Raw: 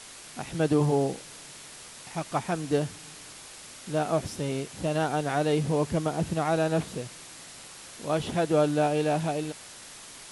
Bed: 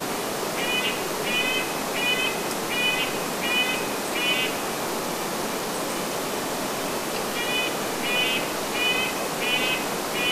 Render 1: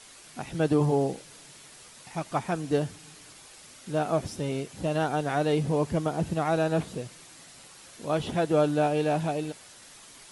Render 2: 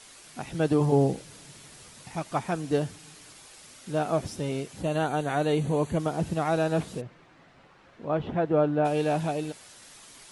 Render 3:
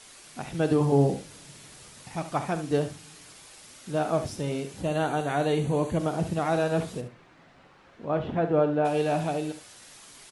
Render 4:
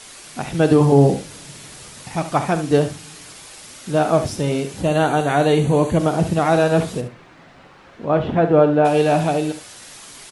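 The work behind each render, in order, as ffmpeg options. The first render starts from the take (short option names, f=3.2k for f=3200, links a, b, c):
-af "afftdn=nr=6:nf=-46"
-filter_complex "[0:a]asettb=1/sr,asplit=3[a][b][c];[a]atrim=end=0.924[d];[b]atrim=start=0.92:end=2.16,asetpts=PTS-STARTPTS,afade=t=in:d=0.004:c=qsin,afade=t=out:st=1.236:d=0.004:c=qsin,equalizer=f=81:w=0.32:g=8.5[e];[c]atrim=start=2.156[f];[d][e]acrossfade=d=0.004:c1=hsin:c2=qsin[g];[g][f]acrossfade=d=0.004:c1=qsin:c2=hsin,asplit=3[h][i][j];[h]afade=t=out:st=4.82:d=0.02[k];[i]asuperstop=centerf=5200:order=20:qfactor=4.4,afade=t=in:st=4.82:d=0.02,afade=t=out:st=5.98:d=0.02[l];[j]afade=t=in:st=5.98:d=0.02[m];[k][l][m]amix=inputs=3:normalize=0,asplit=3[n][o][p];[n]afade=t=out:st=7:d=0.02[q];[o]lowpass=1.8k,afade=t=in:st=7:d=0.02,afade=t=out:st=8.84:d=0.02[r];[p]afade=t=in:st=8.84:d=0.02[s];[q][r][s]amix=inputs=3:normalize=0"
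-filter_complex "[0:a]asplit=2[a][b];[b]adelay=42,volume=-13.5dB[c];[a][c]amix=inputs=2:normalize=0,aecho=1:1:71:0.266"
-af "volume=9.5dB,alimiter=limit=-3dB:level=0:latency=1"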